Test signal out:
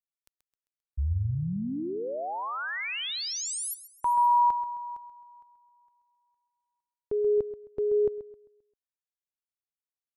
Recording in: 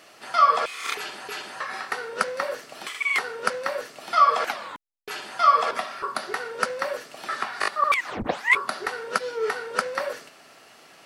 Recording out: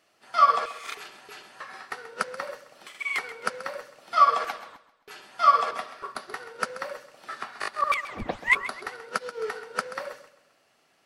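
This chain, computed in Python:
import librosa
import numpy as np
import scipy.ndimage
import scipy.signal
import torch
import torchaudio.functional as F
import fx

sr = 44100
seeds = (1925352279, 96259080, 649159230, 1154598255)

p1 = fx.low_shelf(x, sr, hz=94.0, db=8.0)
p2 = p1 + fx.echo_feedback(p1, sr, ms=132, feedback_pct=45, wet_db=-10.0, dry=0)
y = fx.upward_expand(p2, sr, threshold_db=-44.0, expansion=1.5)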